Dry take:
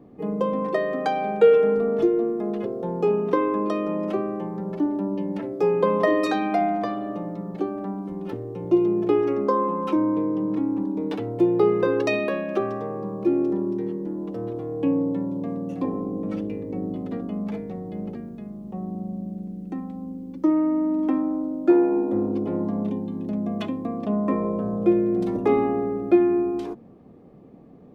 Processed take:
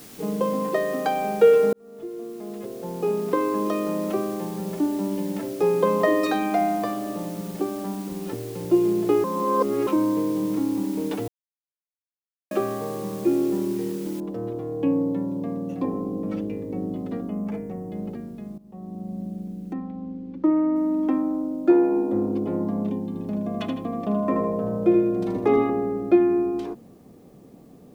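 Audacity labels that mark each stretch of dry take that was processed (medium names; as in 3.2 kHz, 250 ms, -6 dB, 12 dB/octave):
1.730000	3.660000	fade in
9.240000	9.870000	reverse
11.280000	12.510000	mute
14.200000	14.200000	noise floor step -46 dB -68 dB
17.280000	17.920000	peaking EQ 3.9 kHz -9.5 dB 0.62 oct
18.580000	19.220000	fade in, from -16 dB
19.730000	20.760000	low-pass 2.9 kHz
23.070000	25.700000	feedback delay 79 ms, feedback 38%, level -6 dB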